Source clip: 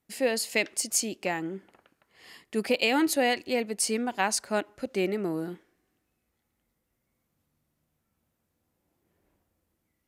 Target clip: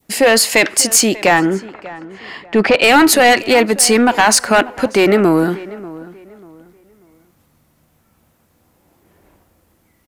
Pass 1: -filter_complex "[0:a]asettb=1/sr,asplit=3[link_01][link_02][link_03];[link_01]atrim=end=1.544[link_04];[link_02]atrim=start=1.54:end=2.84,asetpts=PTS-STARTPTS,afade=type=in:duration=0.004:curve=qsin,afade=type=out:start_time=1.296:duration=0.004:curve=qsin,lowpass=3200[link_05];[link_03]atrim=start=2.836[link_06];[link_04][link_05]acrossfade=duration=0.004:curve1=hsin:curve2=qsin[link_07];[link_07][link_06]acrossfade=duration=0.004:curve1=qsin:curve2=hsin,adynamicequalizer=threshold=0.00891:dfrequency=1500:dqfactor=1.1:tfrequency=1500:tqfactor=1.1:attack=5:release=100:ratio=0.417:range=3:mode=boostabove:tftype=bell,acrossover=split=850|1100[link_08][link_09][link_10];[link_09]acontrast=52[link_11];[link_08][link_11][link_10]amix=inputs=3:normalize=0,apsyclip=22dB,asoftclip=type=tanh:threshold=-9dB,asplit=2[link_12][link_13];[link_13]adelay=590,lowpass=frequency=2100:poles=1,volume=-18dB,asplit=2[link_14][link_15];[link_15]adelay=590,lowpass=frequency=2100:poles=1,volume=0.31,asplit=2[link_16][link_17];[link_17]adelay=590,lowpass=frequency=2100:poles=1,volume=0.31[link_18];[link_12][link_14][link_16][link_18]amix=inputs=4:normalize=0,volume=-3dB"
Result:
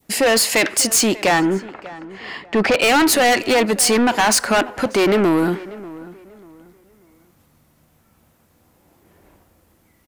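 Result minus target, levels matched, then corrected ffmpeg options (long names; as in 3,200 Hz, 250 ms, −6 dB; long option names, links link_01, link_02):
soft clipping: distortion +11 dB
-filter_complex "[0:a]asettb=1/sr,asplit=3[link_01][link_02][link_03];[link_01]atrim=end=1.544[link_04];[link_02]atrim=start=1.54:end=2.84,asetpts=PTS-STARTPTS,afade=type=in:duration=0.004:curve=qsin,afade=type=out:start_time=1.296:duration=0.004:curve=qsin,lowpass=3200[link_05];[link_03]atrim=start=2.836[link_06];[link_04][link_05]acrossfade=duration=0.004:curve1=hsin:curve2=qsin[link_07];[link_07][link_06]acrossfade=duration=0.004:curve1=qsin:curve2=hsin,adynamicequalizer=threshold=0.00891:dfrequency=1500:dqfactor=1.1:tfrequency=1500:tqfactor=1.1:attack=5:release=100:ratio=0.417:range=3:mode=boostabove:tftype=bell,acrossover=split=850|1100[link_08][link_09][link_10];[link_09]acontrast=52[link_11];[link_08][link_11][link_10]amix=inputs=3:normalize=0,apsyclip=22dB,asoftclip=type=tanh:threshold=0dB,asplit=2[link_12][link_13];[link_13]adelay=590,lowpass=frequency=2100:poles=1,volume=-18dB,asplit=2[link_14][link_15];[link_15]adelay=590,lowpass=frequency=2100:poles=1,volume=0.31,asplit=2[link_16][link_17];[link_17]adelay=590,lowpass=frequency=2100:poles=1,volume=0.31[link_18];[link_12][link_14][link_16][link_18]amix=inputs=4:normalize=0,volume=-3dB"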